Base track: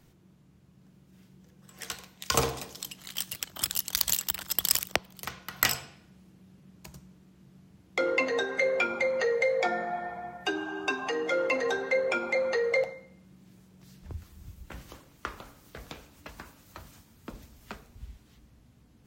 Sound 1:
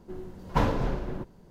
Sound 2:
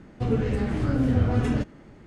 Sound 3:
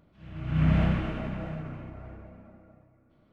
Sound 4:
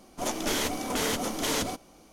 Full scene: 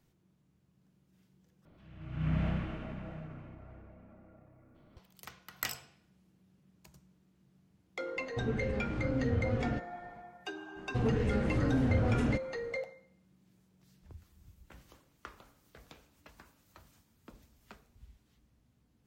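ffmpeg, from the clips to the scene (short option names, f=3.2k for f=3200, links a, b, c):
-filter_complex "[2:a]asplit=2[a][b];[0:a]volume=-11.5dB[c];[3:a]acompressor=mode=upward:threshold=-42dB:ratio=2.5:attack=3.5:release=64:knee=2.83:detection=peak[d];[a]lowpass=5.6k[e];[b]asoftclip=type=hard:threshold=-18.5dB[f];[c]asplit=2[g][h];[g]atrim=end=1.654[i];[d]atrim=end=3.32,asetpts=PTS-STARTPTS,volume=-8.5dB[j];[h]atrim=start=4.966[k];[e]atrim=end=2.06,asetpts=PTS-STARTPTS,volume=-10dB,afade=t=in:d=0.004:c=hsin,afade=t=out:st=2.056:d=0.004:c=hsin,adelay=8160[l];[f]atrim=end=2.06,asetpts=PTS-STARTPTS,volume=-5dB,afade=t=in:d=0.05,afade=t=out:st=2.01:d=0.05,adelay=473634S[m];[i][j]acrossfade=d=0.004:c1=hsin:c2=hsin[n];[n][k]acrossfade=d=0.004:c1=hsin:c2=hsin[o];[o][l][m]amix=inputs=3:normalize=0"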